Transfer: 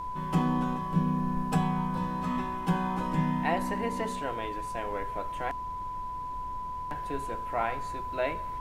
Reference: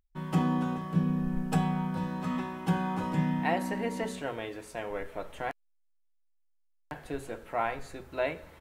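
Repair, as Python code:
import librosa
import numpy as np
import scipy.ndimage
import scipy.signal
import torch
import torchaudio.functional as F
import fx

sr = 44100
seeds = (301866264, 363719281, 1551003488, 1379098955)

y = fx.notch(x, sr, hz=1000.0, q=30.0)
y = fx.noise_reduce(y, sr, print_start_s=5.87, print_end_s=6.37, reduce_db=30.0)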